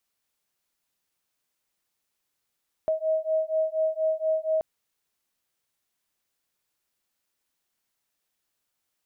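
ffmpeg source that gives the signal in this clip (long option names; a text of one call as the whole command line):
ffmpeg -f lavfi -i "aevalsrc='0.0501*(sin(2*PI*632*t)+sin(2*PI*636.2*t))':duration=1.73:sample_rate=44100" out.wav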